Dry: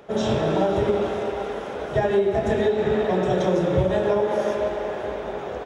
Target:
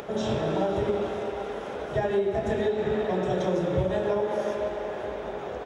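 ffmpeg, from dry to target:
ffmpeg -i in.wav -af "acompressor=mode=upward:threshold=-24dB:ratio=2.5,volume=-5dB" out.wav

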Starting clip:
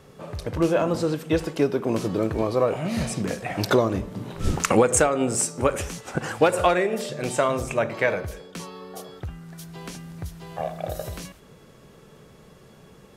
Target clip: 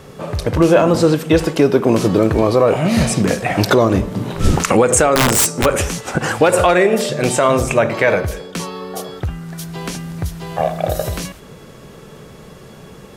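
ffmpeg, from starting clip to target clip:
ffmpeg -i in.wav -filter_complex "[0:a]asplit=3[link_01][link_02][link_03];[link_01]afade=type=out:start_time=5.14:duration=0.02[link_04];[link_02]aeval=exprs='(mod(7.94*val(0)+1,2)-1)/7.94':channel_layout=same,afade=type=in:start_time=5.14:duration=0.02,afade=type=out:start_time=5.64:duration=0.02[link_05];[link_03]afade=type=in:start_time=5.64:duration=0.02[link_06];[link_04][link_05][link_06]amix=inputs=3:normalize=0,alimiter=level_in=12.5dB:limit=-1dB:release=50:level=0:latency=1,volume=-1dB" out.wav

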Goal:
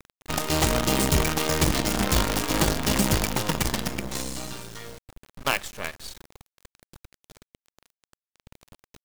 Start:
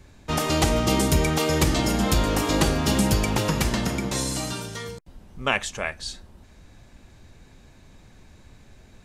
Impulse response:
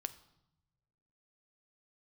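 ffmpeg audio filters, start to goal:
-af "acrusher=bits=4:dc=4:mix=0:aa=0.000001,volume=-2dB"

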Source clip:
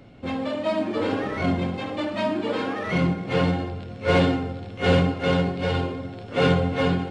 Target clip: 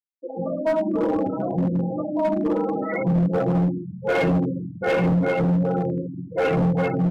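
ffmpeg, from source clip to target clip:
ffmpeg -i in.wav -filter_complex "[0:a]afwtdn=0.0398,acrossover=split=180[link_01][link_02];[link_01]asoftclip=type=tanh:threshold=-28dB[link_03];[link_02]lowshelf=frequency=300:gain=7.5[link_04];[link_03][link_04]amix=inputs=2:normalize=0,aecho=1:1:6.1:0.99,acrossover=split=350|1800[link_05][link_06][link_07];[link_07]adelay=50[link_08];[link_05]adelay=130[link_09];[link_09][link_06][link_08]amix=inputs=3:normalize=0,acompressor=mode=upward:threshold=-32dB:ratio=2.5,highshelf=frequency=6400:gain=11,afftfilt=real='re*gte(hypot(re,im),0.0891)':imag='im*gte(hypot(re,im),0.0891)':win_size=1024:overlap=0.75,highpass=93,asoftclip=type=hard:threshold=-16.5dB" out.wav

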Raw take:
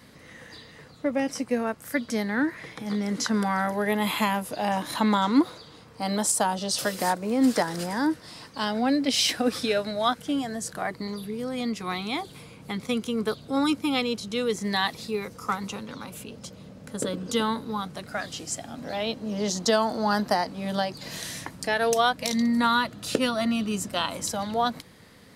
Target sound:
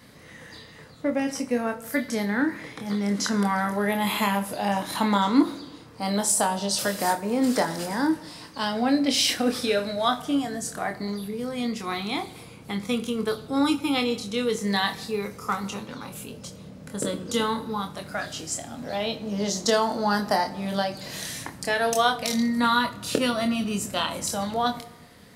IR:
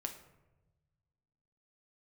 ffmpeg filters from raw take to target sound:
-filter_complex "[0:a]asplit=2[link_01][link_02];[1:a]atrim=start_sample=2205,highshelf=frequency=9000:gain=10,adelay=25[link_03];[link_02][link_03]afir=irnorm=-1:irlink=0,volume=-5dB[link_04];[link_01][link_04]amix=inputs=2:normalize=0"

